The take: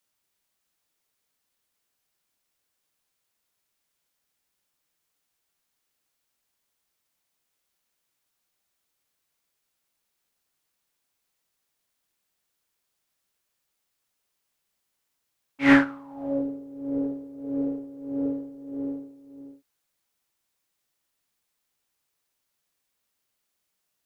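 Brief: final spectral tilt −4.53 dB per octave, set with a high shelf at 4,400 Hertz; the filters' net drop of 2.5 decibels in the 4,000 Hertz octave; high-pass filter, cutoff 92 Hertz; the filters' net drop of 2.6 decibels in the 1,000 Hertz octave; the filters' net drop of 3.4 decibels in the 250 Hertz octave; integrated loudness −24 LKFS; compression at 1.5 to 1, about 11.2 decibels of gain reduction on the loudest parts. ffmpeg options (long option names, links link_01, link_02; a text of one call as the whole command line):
ffmpeg -i in.wav -af "highpass=92,equalizer=frequency=250:width_type=o:gain=-3.5,equalizer=frequency=1000:width_type=o:gain=-3.5,equalizer=frequency=4000:width_type=o:gain=-8,highshelf=frequency=4400:gain=9,acompressor=threshold=-46dB:ratio=1.5,volume=15dB" out.wav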